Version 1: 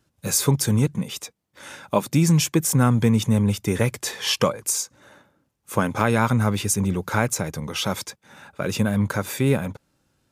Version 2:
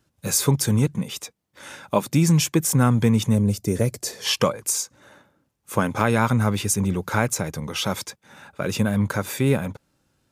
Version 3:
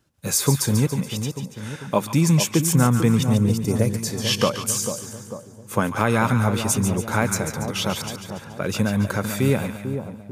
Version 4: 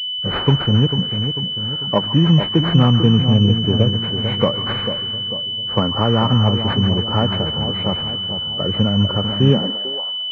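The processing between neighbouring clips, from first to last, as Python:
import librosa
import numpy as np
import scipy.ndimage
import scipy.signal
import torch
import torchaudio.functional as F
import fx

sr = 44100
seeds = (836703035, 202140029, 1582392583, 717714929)

y1 = fx.spec_box(x, sr, start_s=3.35, length_s=0.9, low_hz=720.0, high_hz=4000.0, gain_db=-9)
y2 = fx.echo_split(y1, sr, split_hz=1000.0, low_ms=445, high_ms=142, feedback_pct=52, wet_db=-8.0)
y3 = fx.freq_compress(y2, sr, knee_hz=1100.0, ratio=1.5)
y3 = fx.filter_sweep_highpass(y3, sr, from_hz=67.0, to_hz=1100.0, start_s=9.27, end_s=10.09, q=1.8)
y3 = fx.pwm(y3, sr, carrier_hz=3000.0)
y3 = y3 * 10.0 ** (3.0 / 20.0)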